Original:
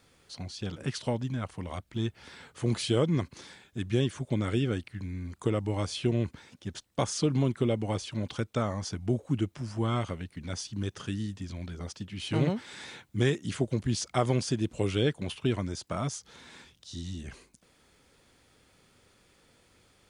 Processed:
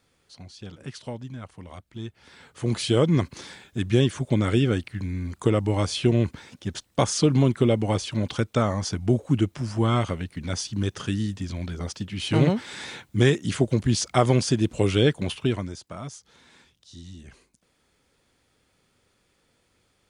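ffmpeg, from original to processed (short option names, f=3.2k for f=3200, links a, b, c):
-af "volume=7dB,afade=t=in:st=2.2:d=1:silence=0.266073,afade=t=out:st=15.24:d=0.6:silence=0.266073"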